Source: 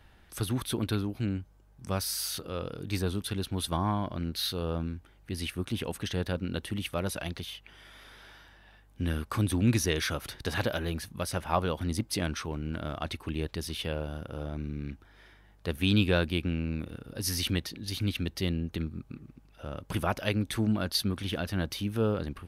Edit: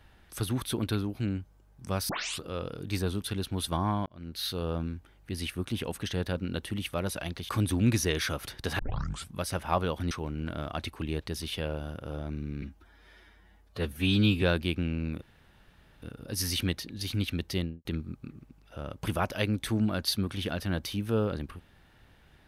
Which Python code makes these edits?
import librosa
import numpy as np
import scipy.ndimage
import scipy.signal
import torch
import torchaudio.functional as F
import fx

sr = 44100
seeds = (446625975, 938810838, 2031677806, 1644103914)

y = fx.studio_fade_out(x, sr, start_s=18.42, length_s=0.3)
y = fx.edit(y, sr, fx.tape_start(start_s=2.09, length_s=0.32),
    fx.fade_in_span(start_s=4.06, length_s=0.49),
    fx.cut(start_s=7.49, length_s=1.81),
    fx.tape_start(start_s=10.6, length_s=0.53),
    fx.cut(start_s=11.92, length_s=0.46),
    fx.stretch_span(start_s=14.89, length_s=1.2, factor=1.5),
    fx.insert_room_tone(at_s=16.89, length_s=0.8), tone=tone)